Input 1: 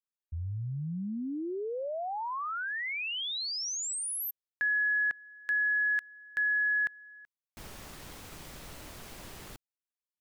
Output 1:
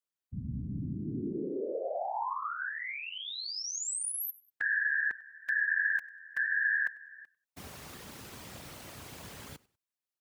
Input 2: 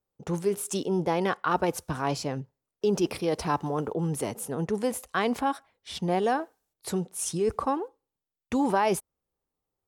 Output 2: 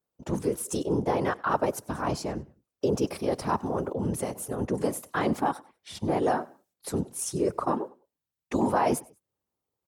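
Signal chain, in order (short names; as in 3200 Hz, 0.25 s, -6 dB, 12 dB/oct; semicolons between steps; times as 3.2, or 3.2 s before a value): dynamic EQ 3100 Hz, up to -6 dB, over -47 dBFS, Q 0.98; on a send: feedback echo 97 ms, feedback 31%, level -22.5 dB; on the sum: whisperiser; HPF 66 Hz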